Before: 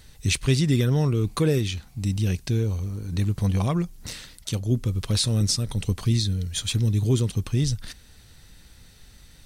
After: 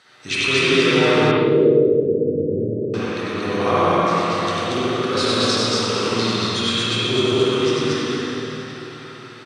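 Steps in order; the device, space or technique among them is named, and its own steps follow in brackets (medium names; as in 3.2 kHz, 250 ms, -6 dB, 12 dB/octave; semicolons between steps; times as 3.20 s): station announcement (band-pass 400–4700 Hz; peaking EQ 1.3 kHz +10 dB 0.44 oct; loudspeakers at several distances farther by 33 m -2 dB, 80 m -1 dB; reverberation RT60 4.7 s, pre-delay 3 ms, DRR -3.5 dB); 1.31–2.94 s: Chebyshev low-pass 600 Hz, order 8; spring tank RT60 1 s, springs 52/60 ms, chirp 70 ms, DRR -5 dB; trim +1 dB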